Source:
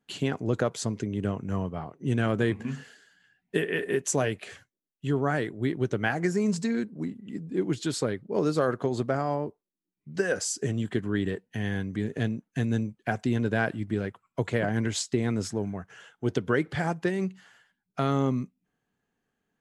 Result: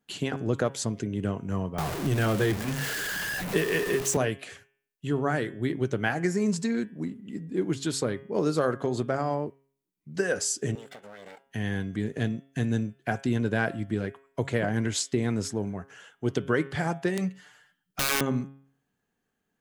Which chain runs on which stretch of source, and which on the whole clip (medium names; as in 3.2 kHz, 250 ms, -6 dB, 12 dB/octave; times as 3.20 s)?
1.78–4.17 s: jump at every zero crossing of -29.5 dBFS + band-stop 240 Hz, Q 6.9 + three bands compressed up and down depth 40%
10.75–11.46 s: comb filter that takes the minimum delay 1.4 ms + high-pass 430 Hz + compression 12:1, threshold -41 dBFS
17.17–18.21 s: comb 6.7 ms, depth 77% + integer overflow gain 21 dB
whole clip: treble shelf 8.4 kHz +5.5 dB; de-hum 136.5 Hz, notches 26